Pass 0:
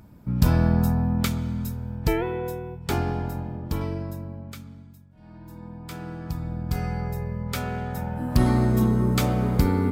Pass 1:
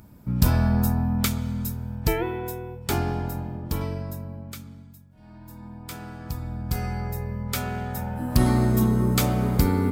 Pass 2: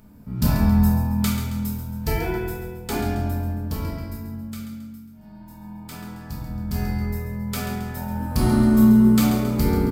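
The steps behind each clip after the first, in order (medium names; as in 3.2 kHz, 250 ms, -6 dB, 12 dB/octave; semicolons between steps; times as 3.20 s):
treble shelf 6 kHz +8 dB; de-hum 164.9 Hz, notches 3
on a send: feedback delay 136 ms, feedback 47%, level -10 dB; on the sum: simulated room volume 300 m³, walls mixed, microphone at 1.5 m; trim -4.5 dB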